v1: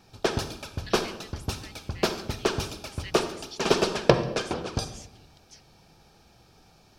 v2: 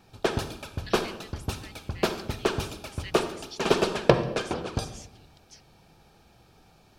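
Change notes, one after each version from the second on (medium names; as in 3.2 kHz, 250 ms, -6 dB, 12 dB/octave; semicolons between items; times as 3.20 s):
background: add peaking EQ 5.4 kHz -6 dB 0.65 oct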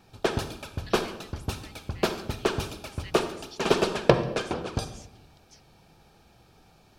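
speech -4.0 dB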